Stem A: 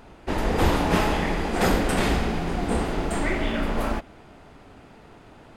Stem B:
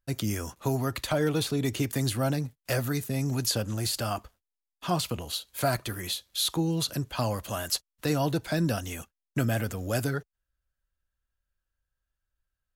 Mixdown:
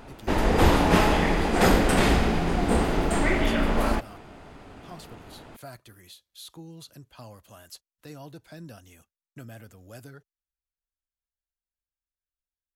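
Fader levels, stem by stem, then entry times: +2.0 dB, -16.5 dB; 0.00 s, 0.00 s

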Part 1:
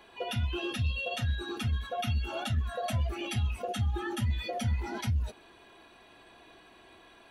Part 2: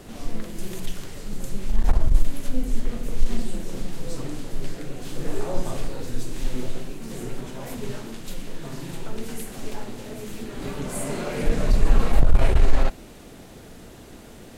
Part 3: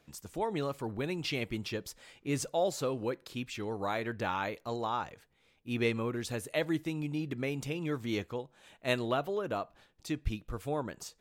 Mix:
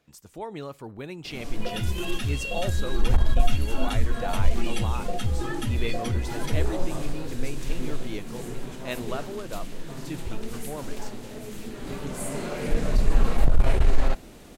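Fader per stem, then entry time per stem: +2.0 dB, -2.5 dB, -2.5 dB; 1.45 s, 1.25 s, 0.00 s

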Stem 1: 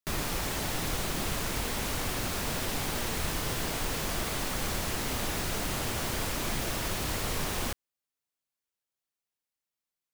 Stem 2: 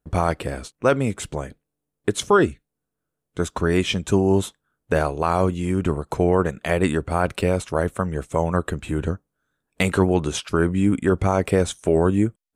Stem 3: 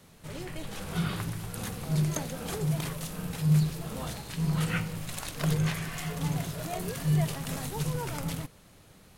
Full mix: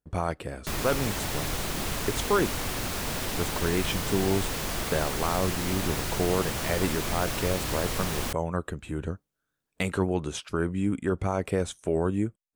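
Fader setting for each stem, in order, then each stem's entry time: +1.0 dB, -8.0 dB, mute; 0.60 s, 0.00 s, mute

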